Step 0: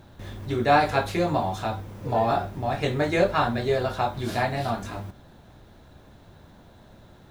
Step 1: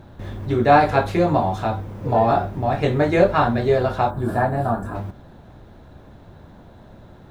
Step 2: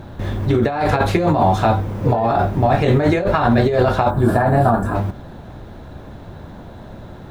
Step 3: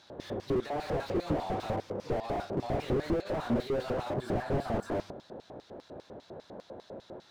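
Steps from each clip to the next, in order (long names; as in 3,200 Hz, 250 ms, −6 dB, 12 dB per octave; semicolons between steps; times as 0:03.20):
gain on a spectral selection 0:04.10–0:04.95, 1,800–7,300 Hz −13 dB; high-shelf EQ 2,400 Hz −10.5 dB; level +6.5 dB
compressor whose output falls as the input rises −21 dBFS, ratio −1; level +6 dB
auto-filter band-pass square 5 Hz 490–4,900 Hz; slew-rate limiting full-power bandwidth 15 Hz; level +1.5 dB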